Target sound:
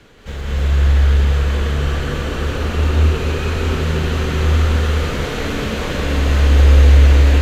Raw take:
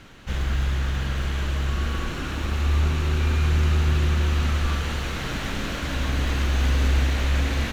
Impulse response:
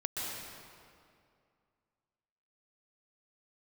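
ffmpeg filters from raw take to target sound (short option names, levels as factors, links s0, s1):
-filter_complex "[0:a]equalizer=f=440:w=3.8:g=9,acrossover=split=250|700|1800[s0][s1][s2][s3];[s1]crystalizer=i=9.5:c=0[s4];[s0][s4][s2][s3]amix=inputs=4:normalize=0[s5];[1:a]atrim=start_sample=2205,asetrate=29547,aresample=44100[s6];[s5][s6]afir=irnorm=-1:irlink=0,asetrate=45938,aresample=44100,volume=0.841"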